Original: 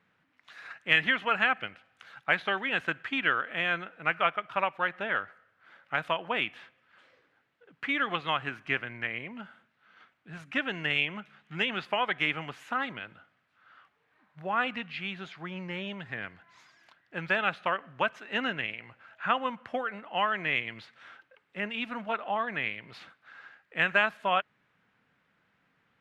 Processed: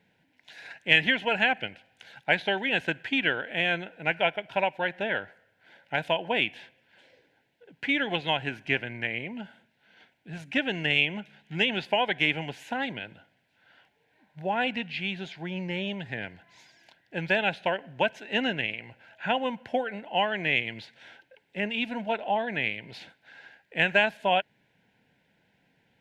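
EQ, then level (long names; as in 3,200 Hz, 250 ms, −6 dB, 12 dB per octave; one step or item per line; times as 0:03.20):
Butterworth band-reject 1,200 Hz, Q 2
parametric band 1,800 Hz −4.5 dB 0.6 octaves
+5.5 dB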